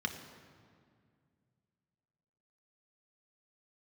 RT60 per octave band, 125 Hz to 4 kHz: 3.1, 2.8, 2.2, 2.0, 1.8, 1.4 s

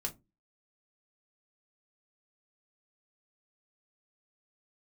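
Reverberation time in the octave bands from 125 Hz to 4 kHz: 0.35, 0.40, 0.25, 0.20, 0.15, 0.10 s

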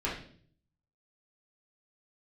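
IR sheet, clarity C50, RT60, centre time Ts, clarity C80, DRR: 4.5 dB, 0.55 s, 35 ms, 9.5 dB, -8.0 dB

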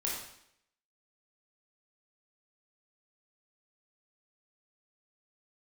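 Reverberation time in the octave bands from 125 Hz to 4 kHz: 0.70, 0.70, 0.75, 0.70, 0.70, 0.70 s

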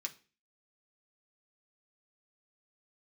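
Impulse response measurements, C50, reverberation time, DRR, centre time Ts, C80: 17.0 dB, not exponential, 2.0 dB, 7 ms, 22.5 dB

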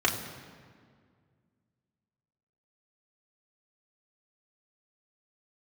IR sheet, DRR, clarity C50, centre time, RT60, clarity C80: -2.0 dB, 8.0 dB, 33 ms, 1.9 s, 9.0 dB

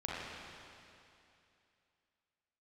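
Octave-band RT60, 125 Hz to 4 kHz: 2.7, 2.7, 2.7, 2.7, 2.7, 2.7 s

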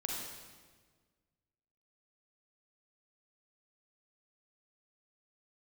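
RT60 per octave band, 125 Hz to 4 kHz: 2.0, 1.9, 1.6, 1.4, 1.3, 1.2 s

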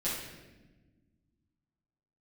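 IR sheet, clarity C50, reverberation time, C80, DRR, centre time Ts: 1.0 dB, 1.2 s, 4.0 dB, -10.0 dB, 66 ms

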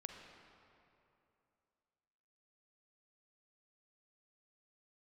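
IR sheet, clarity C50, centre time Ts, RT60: 3.5 dB, 73 ms, 2.8 s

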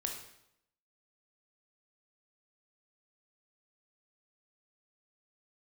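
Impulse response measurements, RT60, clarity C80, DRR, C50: 0.75 s, 8.0 dB, 2.0 dB, 5.0 dB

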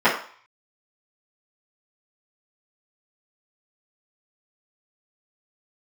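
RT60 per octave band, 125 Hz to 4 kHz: 0.35, 0.35, 0.40, 0.55, 0.50, 0.50 s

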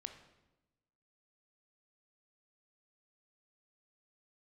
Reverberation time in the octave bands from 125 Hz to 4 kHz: 1.4, 1.3, 1.1, 0.95, 0.85, 0.80 s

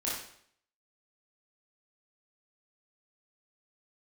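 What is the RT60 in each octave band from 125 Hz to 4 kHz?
0.65, 0.60, 0.65, 0.60, 0.60, 0.60 s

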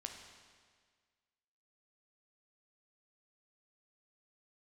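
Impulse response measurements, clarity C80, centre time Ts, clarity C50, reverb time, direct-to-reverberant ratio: 6.5 dB, 46 ms, 5.0 dB, 1.7 s, 2.5 dB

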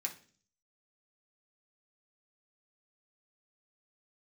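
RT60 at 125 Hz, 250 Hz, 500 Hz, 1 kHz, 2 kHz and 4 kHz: 0.70, 0.65, 0.50, 0.35, 0.40, 0.50 s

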